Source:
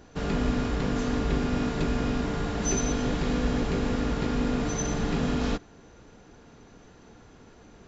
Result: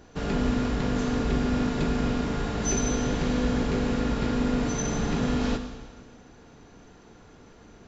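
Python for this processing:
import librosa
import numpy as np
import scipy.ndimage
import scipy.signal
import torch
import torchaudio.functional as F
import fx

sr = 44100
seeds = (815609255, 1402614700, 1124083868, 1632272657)

y = fx.rev_schroeder(x, sr, rt60_s=1.5, comb_ms=32, drr_db=6.5)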